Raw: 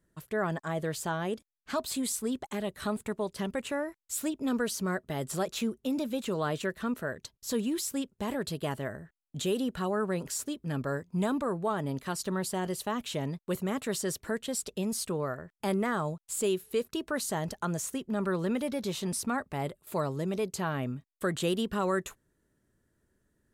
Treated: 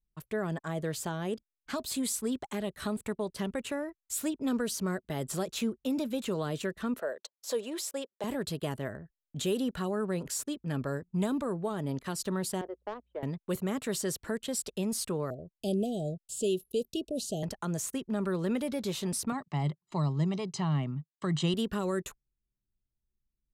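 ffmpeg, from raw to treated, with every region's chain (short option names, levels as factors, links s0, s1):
-filter_complex "[0:a]asettb=1/sr,asplit=3[s0][s1][s2];[s0]atrim=end=6.994[s3];[s1]atrim=start=6.99:end=8.24,asetpts=PTS-STARTPTS,afade=t=in:d=0.004:c=qsin,afade=t=out:st=1.246:d=0.004:c=qsin,highpass=f=550:t=q:w=2.3,highshelf=f=8700:g=-6[s4];[s2]atrim=start=8.236[s5];[s3][s4]acrossfade=d=0.004:c1=hsin:c2=qsin[s6];[s6][s5]acrossfade=d=0.004:c1=qsin:c2=hsin,asettb=1/sr,asplit=3[s7][s8][s9];[s7]atrim=end=12.614[s10];[s8]atrim=start=12.61:end=13.23,asetpts=PTS-STARTPTS,afade=t=in:d=0.004:c=qsin,afade=t=out:st=0.616:d=0.004:c=qsin,highpass=f=400:w=0.5412,highpass=f=400:w=1.3066,adynamicsmooth=sensitivity=1:basefreq=740,aeval=exprs='val(0)+0.000501*(sin(2*PI*60*n/s)+sin(2*PI*2*60*n/s)/2+sin(2*PI*3*60*n/s)/3+sin(2*PI*4*60*n/s)/4+sin(2*PI*5*60*n/s)/5)':c=same[s11];[s9]atrim=start=13.226[s12];[s10][s11]acrossfade=d=0.004:c1=hsin:c2=qsin[s13];[s13][s12]acrossfade=d=0.004:c1=qsin:c2=hsin,asettb=1/sr,asplit=3[s14][s15][s16];[s14]atrim=end=15.304[s17];[s15]atrim=start=15.3:end=17.43,asetpts=PTS-STARTPTS,afade=t=in:d=0.004:c=qsin,afade=t=out:st=2.126:d=0.004:c=qsin,acrossover=split=7900[s18][s19];[s19]acompressor=threshold=0.00398:ratio=4:attack=1:release=60[s20];[s18][s20]amix=inputs=2:normalize=0,asuperstop=centerf=1400:order=20:qfactor=0.73[s21];[s16]atrim=start=17.426[s22];[s17][s21]acrossfade=d=0.004:c1=hsin:c2=qsin[s23];[s23][s22]acrossfade=d=0.004:c1=qsin:c2=hsin,asettb=1/sr,asplit=3[s24][s25][s26];[s24]atrim=end=19.324[s27];[s25]atrim=start=19.32:end=21.54,asetpts=PTS-STARTPTS,afade=t=in:d=0.004:c=qsin,afade=t=out:st=2.216:d=0.004:c=qsin,highpass=f=140:w=0.5412,highpass=f=140:w=1.3066,equalizer=f=150:t=q:w=4:g=9,equalizer=f=230:t=q:w=4:g=-7,equalizer=f=1800:t=q:w=4:g=-4,lowpass=f=6800:w=0.5412,lowpass=f=6800:w=1.3066,aecho=1:1:1:0.66,atrim=end_sample=97902[s28];[s26]atrim=start=21.536[s29];[s27][s28]acrossfade=d=0.004:c1=hsin:c2=qsin[s30];[s30][s29]acrossfade=d=0.004:c1=qsin:c2=hsin,anlmdn=0.00398,acrossover=split=500|3000[s31][s32][s33];[s32]acompressor=threshold=0.0141:ratio=6[s34];[s31][s34][s33]amix=inputs=3:normalize=0"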